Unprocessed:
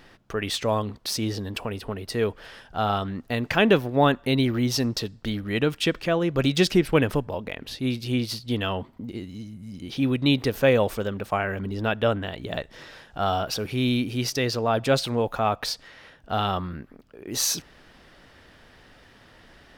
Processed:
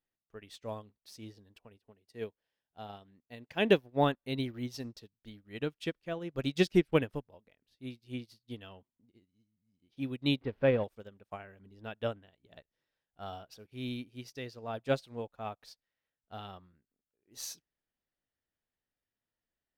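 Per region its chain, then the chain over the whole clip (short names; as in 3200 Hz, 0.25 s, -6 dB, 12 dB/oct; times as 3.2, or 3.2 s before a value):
1.77–3.78 HPF 100 Hz 6 dB/oct + bell 1300 Hz -6 dB 0.38 oct
10.41–10.84 zero-crossing step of -27 dBFS + air absorption 420 m
whole clip: bell 1200 Hz -3 dB 0.81 oct; upward expander 2.5:1, over -40 dBFS; gain -3 dB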